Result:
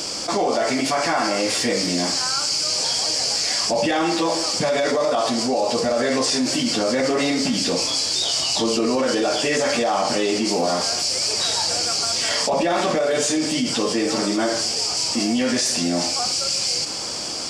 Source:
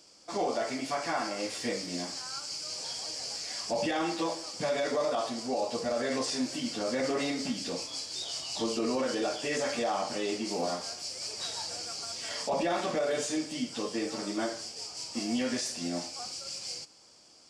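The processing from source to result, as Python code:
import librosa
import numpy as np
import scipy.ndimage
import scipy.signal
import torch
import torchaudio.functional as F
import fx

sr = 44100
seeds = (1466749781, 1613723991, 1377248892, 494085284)

y = fx.env_flatten(x, sr, amount_pct=70)
y = y * librosa.db_to_amplitude(7.5)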